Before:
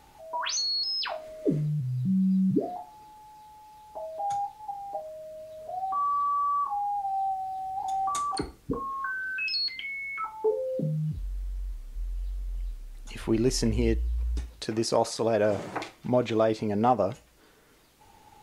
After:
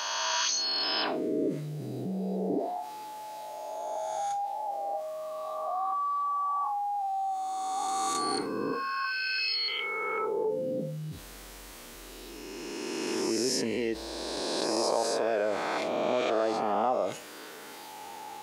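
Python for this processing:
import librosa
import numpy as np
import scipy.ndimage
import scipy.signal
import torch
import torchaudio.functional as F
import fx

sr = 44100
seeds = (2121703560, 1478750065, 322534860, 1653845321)

y = fx.spec_swells(x, sr, rise_s=1.82)
y = scipy.signal.sosfilt(scipy.signal.butter(2, 300.0, 'highpass', fs=sr, output='sos'), y)
y = fx.env_flatten(y, sr, amount_pct=50)
y = F.gain(torch.from_numpy(y), -7.5).numpy()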